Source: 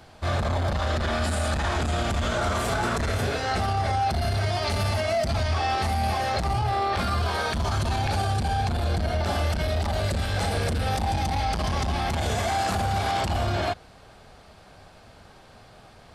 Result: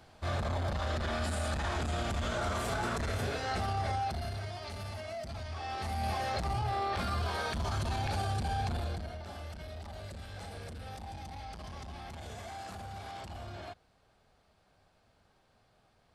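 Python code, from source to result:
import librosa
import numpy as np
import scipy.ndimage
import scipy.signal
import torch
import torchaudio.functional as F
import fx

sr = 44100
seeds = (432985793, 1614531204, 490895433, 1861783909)

y = fx.gain(x, sr, db=fx.line((3.91, -8.0), (4.59, -16.0), (5.51, -16.0), (6.09, -8.0), (8.76, -8.0), (9.21, -18.5)))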